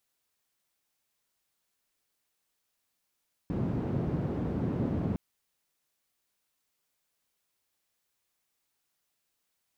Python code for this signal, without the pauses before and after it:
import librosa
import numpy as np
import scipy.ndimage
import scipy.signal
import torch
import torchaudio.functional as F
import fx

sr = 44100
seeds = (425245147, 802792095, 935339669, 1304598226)

y = fx.band_noise(sr, seeds[0], length_s=1.66, low_hz=84.0, high_hz=230.0, level_db=-31.0)